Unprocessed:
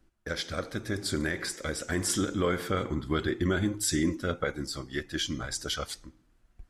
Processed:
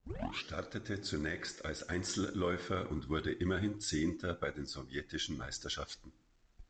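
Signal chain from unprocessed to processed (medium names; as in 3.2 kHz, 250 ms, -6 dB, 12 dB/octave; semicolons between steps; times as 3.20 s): tape start-up on the opening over 0.52 s; trim -7 dB; µ-law 128 kbps 16 kHz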